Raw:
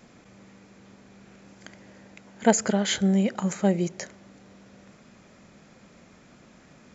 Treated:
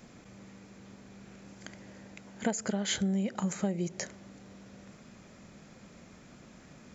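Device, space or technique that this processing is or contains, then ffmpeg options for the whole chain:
ASMR close-microphone chain: -af "lowshelf=frequency=230:gain=4.5,acompressor=threshold=-26dB:ratio=5,highshelf=frequency=6100:gain=5,volume=-2dB"

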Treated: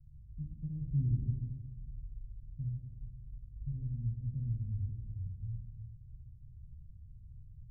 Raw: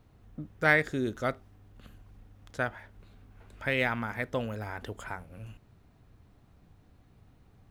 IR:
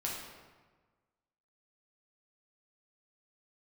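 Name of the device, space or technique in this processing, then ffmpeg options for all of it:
club heard from the street: -filter_complex "[0:a]asettb=1/sr,asplit=3[link_01][link_02][link_03];[link_01]atrim=end=0.814[link_04];[link_02]atrim=start=0.81:end=1.25,asetpts=PTS-STARTPTS,afade=type=in:duration=0.004:curve=qsin,afade=type=out:start_time=0.436:duration=0.004:curve=qsin,tiltshelf=frequency=970:gain=6.5[link_05];[link_03]atrim=start=1.246[link_06];[link_04][link_05]acrossfade=duration=0.004:curve1=hsin:curve2=qsin[link_07];[link_07][link_06]acrossfade=duration=0.004:curve1=qsin:curve2=hsin,alimiter=limit=-18.5dB:level=0:latency=1:release=259,lowpass=frequency=120:width=0.5412,lowpass=frequency=120:width=1.3066[link_08];[1:a]atrim=start_sample=2205[link_09];[link_08][link_09]afir=irnorm=-1:irlink=0,volume=6.5dB"

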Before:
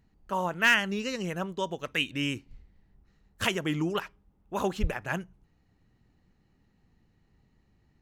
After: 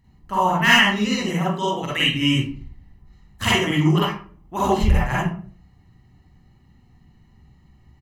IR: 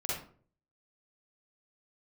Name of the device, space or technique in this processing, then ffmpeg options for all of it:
microphone above a desk: -filter_complex "[0:a]asettb=1/sr,asplit=3[link_01][link_02][link_03];[link_01]atrim=end=1.164[link_04];[link_02]atrim=start=1.16:end=1.82,asetpts=PTS-STARTPTS,afade=type=in:duration=0.004:curve=qsin,afade=type=out:start_time=0.656:duration=0.004:curve=qsin,highpass=130[link_05];[link_03]atrim=start=1.816[link_06];[link_04][link_05]acrossfade=duration=0.004:curve1=hsin:curve2=qsin[link_07];[link_07][link_06]acrossfade=duration=0.004:curve1=qsin:curve2=hsin,aecho=1:1:1:0.54[link_08];[1:a]atrim=start_sample=2205[link_09];[link_08][link_09]afir=irnorm=-1:irlink=0,volume=5dB"

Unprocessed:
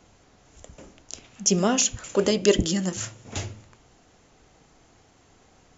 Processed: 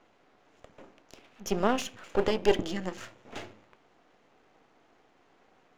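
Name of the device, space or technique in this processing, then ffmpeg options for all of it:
crystal radio: -af "highpass=270,lowpass=2700,aeval=exprs='if(lt(val(0),0),0.251*val(0),val(0))':channel_layout=same"

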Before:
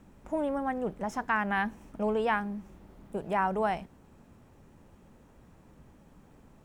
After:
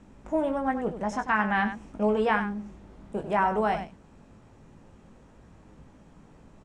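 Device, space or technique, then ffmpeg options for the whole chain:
slapback doubling: -filter_complex "[0:a]lowpass=frequency=8600:width=0.5412,lowpass=frequency=8600:width=1.3066,asplit=3[link_01][link_02][link_03];[link_02]adelay=19,volume=-7dB[link_04];[link_03]adelay=96,volume=-10dB[link_05];[link_01][link_04][link_05]amix=inputs=3:normalize=0,volume=2.5dB"

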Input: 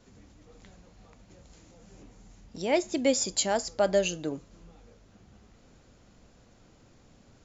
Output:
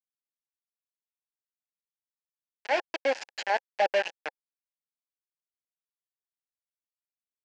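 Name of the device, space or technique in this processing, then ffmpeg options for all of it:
hand-held game console: -af "acrusher=bits=3:mix=0:aa=0.000001,highpass=500,equalizer=frequency=530:width_type=q:width=4:gain=6,equalizer=frequency=820:width_type=q:width=4:gain=9,equalizer=frequency=1200:width_type=q:width=4:gain=-10,equalizer=frequency=1700:width_type=q:width=4:gain=10,equalizer=frequency=2600:width_type=q:width=4:gain=5,equalizer=frequency=3700:width_type=q:width=4:gain=-7,lowpass=frequency=4700:width=0.5412,lowpass=frequency=4700:width=1.3066,volume=-4.5dB"

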